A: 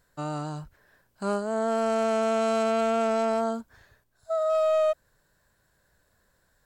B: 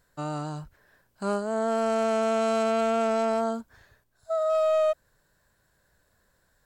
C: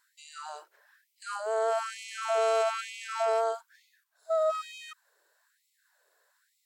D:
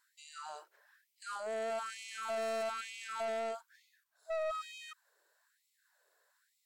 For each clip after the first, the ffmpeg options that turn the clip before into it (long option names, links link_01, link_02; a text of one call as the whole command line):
ffmpeg -i in.wav -af anull out.wav
ffmpeg -i in.wav -af "afftfilt=real='re*gte(b*sr/1024,320*pow(2000/320,0.5+0.5*sin(2*PI*1.1*pts/sr)))':imag='im*gte(b*sr/1024,320*pow(2000/320,0.5+0.5*sin(2*PI*1.1*pts/sr)))':win_size=1024:overlap=0.75" out.wav
ffmpeg -i in.wav -af "asoftclip=type=tanh:threshold=-29dB,volume=-4dB" out.wav